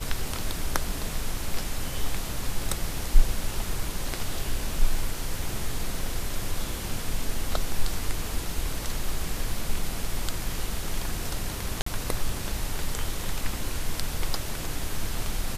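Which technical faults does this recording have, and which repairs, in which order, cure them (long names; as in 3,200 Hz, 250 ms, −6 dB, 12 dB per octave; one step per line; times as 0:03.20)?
0:11.82–0:11.86: drop-out 44 ms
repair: repair the gap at 0:11.82, 44 ms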